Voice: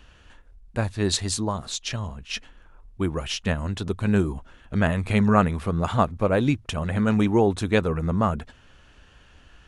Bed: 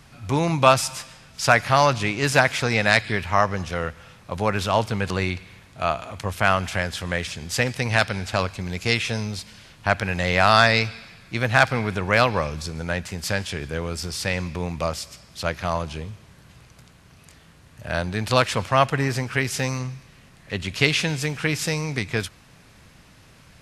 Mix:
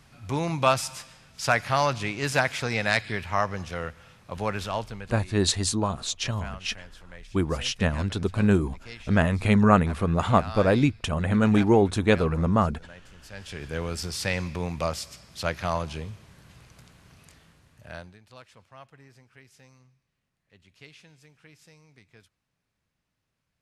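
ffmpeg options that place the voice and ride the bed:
-filter_complex "[0:a]adelay=4350,volume=1.06[s0];[1:a]volume=4.47,afade=t=out:st=4.48:d=0.71:silence=0.16788,afade=t=in:st=13.31:d=0.5:silence=0.112202,afade=t=out:st=17.1:d=1.09:silence=0.0421697[s1];[s0][s1]amix=inputs=2:normalize=0"

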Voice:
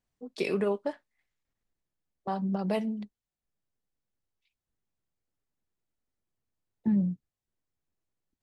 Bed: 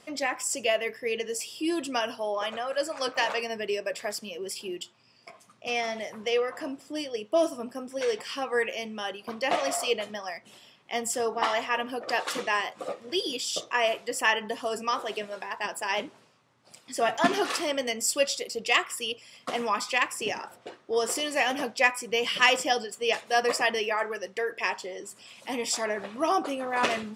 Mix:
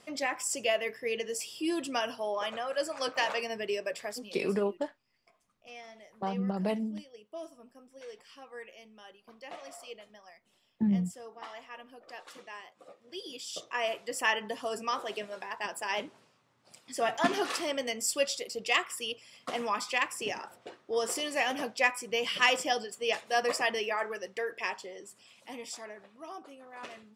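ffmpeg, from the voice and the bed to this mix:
-filter_complex "[0:a]adelay=3950,volume=0.841[s0];[1:a]volume=3.76,afade=t=out:st=3.87:d=0.67:silence=0.16788,afade=t=in:st=12.95:d=1.28:silence=0.188365,afade=t=out:st=24.34:d=1.75:silence=0.177828[s1];[s0][s1]amix=inputs=2:normalize=0"

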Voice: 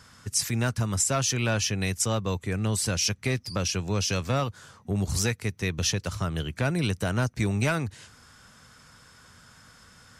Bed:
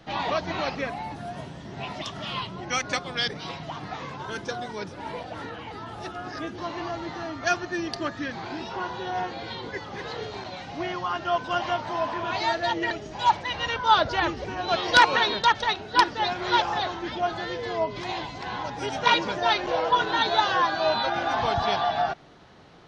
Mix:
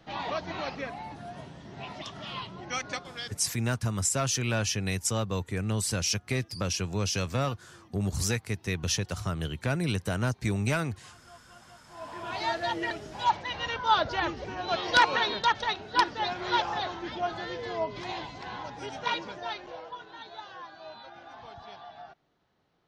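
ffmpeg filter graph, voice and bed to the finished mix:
-filter_complex "[0:a]adelay=3050,volume=0.75[s0];[1:a]volume=7.94,afade=t=out:st=2.82:d=0.78:silence=0.0749894,afade=t=in:st=11.87:d=0.6:silence=0.0630957,afade=t=out:st=18.12:d=1.87:silence=0.141254[s1];[s0][s1]amix=inputs=2:normalize=0"

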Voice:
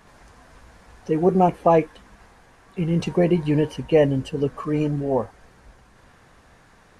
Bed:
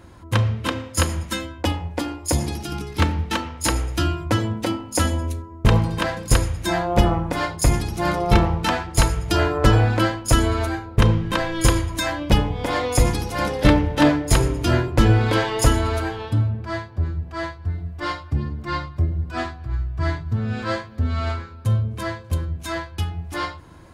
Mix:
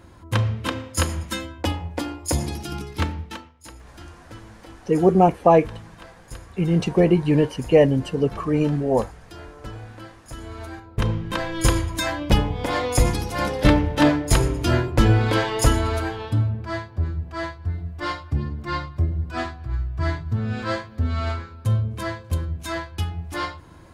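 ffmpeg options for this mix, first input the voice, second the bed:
-filter_complex "[0:a]adelay=3800,volume=1.26[s0];[1:a]volume=8.41,afade=t=out:st=2.79:d=0.74:silence=0.105925,afade=t=in:st=10.35:d=1.48:silence=0.0944061[s1];[s0][s1]amix=inputs=2:normalize=0"

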